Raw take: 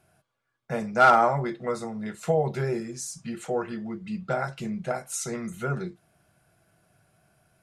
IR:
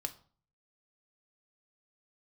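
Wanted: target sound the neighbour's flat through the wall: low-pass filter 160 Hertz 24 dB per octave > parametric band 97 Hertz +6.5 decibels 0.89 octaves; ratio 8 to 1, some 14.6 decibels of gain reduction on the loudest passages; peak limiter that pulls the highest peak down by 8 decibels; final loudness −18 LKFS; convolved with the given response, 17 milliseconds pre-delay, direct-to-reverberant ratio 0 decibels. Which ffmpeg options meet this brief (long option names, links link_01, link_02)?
-filter_complex "[0:a]acompressor=threshold=-28dB:ratio=8,alimiter=level_in=2dB:limit=-24dB:level=0:latency=1,volume=-2dB,asplit=2[link_01][link_02];[1:a]atrim=start_sample=2205,adelay=17[link_03];[link_02][link_03]afir=irnorm=-1:irlink=0,volume=0.5dB[link_04];[link_01][link_04]amix=inputs=2:normalize=0,lowpass=frequency=160:width=0.5412,lowpass=frequency=160:width=1.3066,equalizer=frequency=97:width_type=o:width=0.89:gain=6.5,volume=22dB"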